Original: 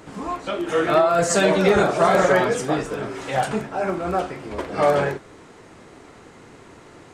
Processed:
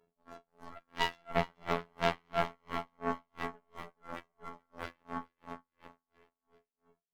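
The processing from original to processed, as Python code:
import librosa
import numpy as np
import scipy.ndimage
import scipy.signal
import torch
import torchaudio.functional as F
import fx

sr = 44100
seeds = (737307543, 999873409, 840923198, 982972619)

p1 = scipy.signal.sosfilt(scipy.signal.butter(8, 770.0, 'lowpass', fs=sr, output='sos'), x)
p2 = fx.low_shelf(p1, sr, hz=220.0, db=10.0)
p3 = fx.leveller(p2, sr, passes=3)
p4 = fx.formant_shift(p3, sr, semitones=5)
p5 = fx.stiff_resonator(p4, sr, f0_hz=200.0, decay_s=0.75, stiffness=0.03)
p6 = fx.cheby_harmonics(p5, sr, harmonics=(3, 5, 6, 7), levels_db=(-14, -8, -10, -8), full_scale_db=-12.5)
p7 = fx.robotise(p6, sr, hz=85.3)
p8 = p7 + fx.echo_feedback(p7, sr, ms=423, feedback_pct=39, wet_db=-9.0, dry=0)
p9 = p8 * 10.0 ** (-40 * (0.5 - 0.5 * np.cos(2.0 * np.pi * 2.9 * np.arange(len(p8)) / sr)) / 20.0)
y = p9 * librosa.db_to_amplitude(-3.5)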